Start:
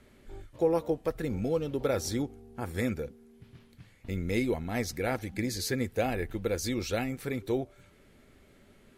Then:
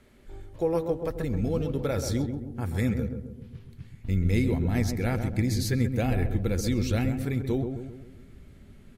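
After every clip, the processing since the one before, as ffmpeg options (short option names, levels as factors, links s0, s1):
-filter_complex "[0:a]asubboost=boost=3.5:cutoff=240,asplit=2[s0][s1];[s1]adelay=133,lowpass=f=1000:p=1,volume=0.531,asplit=2[s2][s3];[s3]adelay=133,lowpass=f=1000:p=1,volume=0.51,asplit=2[s4][s5];[s5]adelay=133,lowpass=f=1000:p=1,volume=0.51,asplit=2[s6][s7];[s7]adelay=133,lowpass=f=1000:p=1,volume=0.51,asplit=2[s8][s9];[s9]adelay=133,lowpass=f=1000:p=1,volume=0.51,asplit=2[s10][s11];[s11]adelay=133,lowpass=f=1000:p=1,volume=0.51[s12];[s2][s4][s6][s8][s10][s12]amix=inputs=6:normalize=0[s13];[s0][s13]amix=inputs=2:normalize=0"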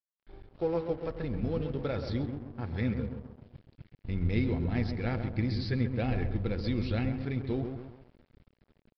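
-af "bandreject=f=93.29:t=h:w=4,bandreject=f=186.58:t=h:w=4,bandreject=f=279.87:t=h:w=4,bandreject=f=373.16:t=h:w=4,bandreject=f=466.45:t=h:w=4,bandreject=f=559.74:t=h:w=4,bandreject=f=653.03:t=h:w=4,bandreject=f=746.32:t=h:w=4,bandreject=f=839.61:t=h:w=4,bandreject=f=932.9:t=h:w=4,bandreject=f=1026.19:t=h:w=4,bandreject=f=1119.48:t=h:w=4,aresample=11025,aeval=exprs='sgn(val(0))*max(abs(val(0))-0.00501,0)':c=same,aresample=44100,volume=0.668"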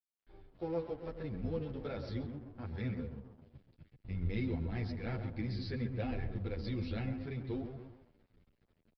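-filter_complex "[0:a]asplit=2[s0][s1];[s1]adelay=9.8,afreqshift=-2.6[s2];[s0][s2]amix=inputs=2:normalize=1,volume=0.631"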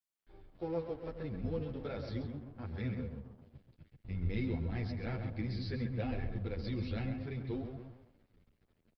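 -af "aecho=1:1:135:0.237"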